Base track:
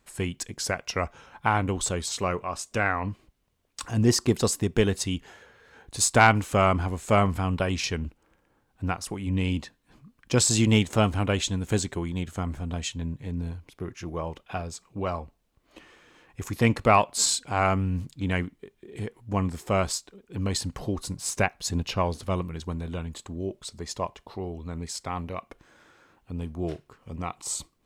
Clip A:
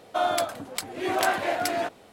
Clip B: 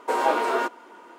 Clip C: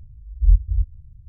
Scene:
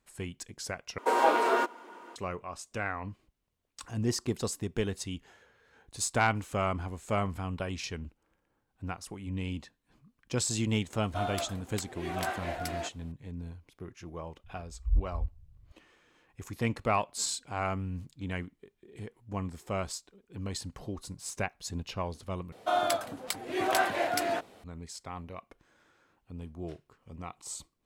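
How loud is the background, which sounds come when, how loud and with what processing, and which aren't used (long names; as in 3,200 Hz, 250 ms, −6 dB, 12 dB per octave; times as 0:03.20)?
base track −9 dB
0:00.98: overwrite with B −2 dB
0:11.00: mix in A −10 dB
0:14.44: mix in C −12.5 dB
0:22.52: overwrite with A −3 dB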